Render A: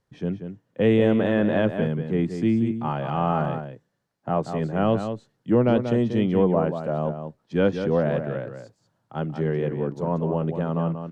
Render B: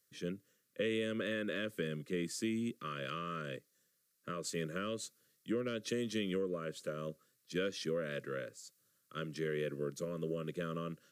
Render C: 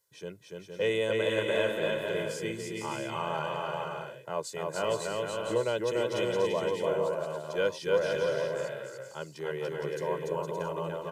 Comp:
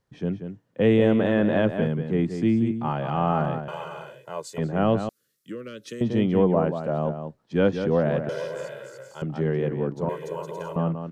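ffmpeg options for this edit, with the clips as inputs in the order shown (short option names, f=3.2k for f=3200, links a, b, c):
-filter_complex "[2:a]asplit=3[a][b][c];[0:a]asplit=5[d][e][f][g][h];[d]atrim=end=3.682[i];[a]atrim=start=3.678:end=4.582[j];[e]atrim=start=4.578:end=5.092[k];[1:a]atrim=start=5.088:end=6.012[l];[f]atrim=start=6.008:end=8.292[m];[b]atrim=start=8.288:end=9.222[n];[g]atrim=start=9.218:end=10.092[o];[c]atrim=start=10.088:end=10.762[p];[h]atrim=start=10.758[q];[i][j]acrossfade=d=0.004:c1=hsin:c2=hsin[r];[r][k]acrossfade=d=0.004:c1=hsin:c2=hsin[s];[s][l]acrossfade=d=0.004:c1=hsin:c2=hsin[t];[t][m]acrossfade=d=0.004:c1=hsin:c2=hsin[u];[u][n]acrossfade=d=0.004:c1=hsin:c2=hsin[v];[v][o]acrossfade=d=0.004:c1=hsin:c2=hsin[w];[w][p]acrossfade=d=0.004:c1=hsin:c2=hsin[x];[x][q]acrossfade=d=0.004:c1=hsin:c2=hsin"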